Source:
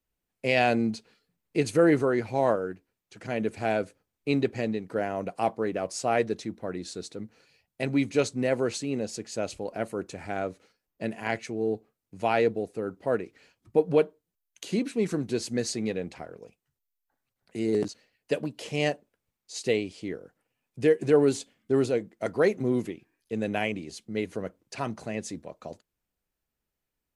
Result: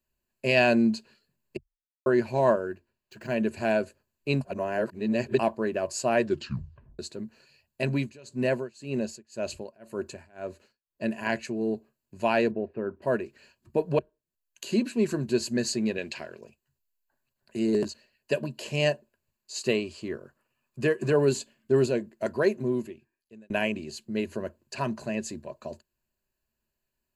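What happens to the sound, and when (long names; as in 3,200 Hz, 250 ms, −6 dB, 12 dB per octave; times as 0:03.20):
0:01.57–0:02.06: silence
0:02.65–0:03.35: running median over 5 samples
0:04.41–0:05.39: reverse
0:06.23: tape stop 0.76 s
0:07.94–0:11.08: amplitude tremolo 1.9 Hz, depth 96%
0:12.51–0:13.02: low-pass filter 2,400 Hz 24 dB per octave
0:13.99–0:14.69: fade in
0:15.98–0:16.41: meter weighting curve D
0:19.59–0:21.12: parametric band 1,200 Hz +11 dB 0.35 octaves
0:22.16–0:23.50: fade out
whole clip: EQ curve with evenly spaced ripples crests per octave 1.4, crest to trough 10 dB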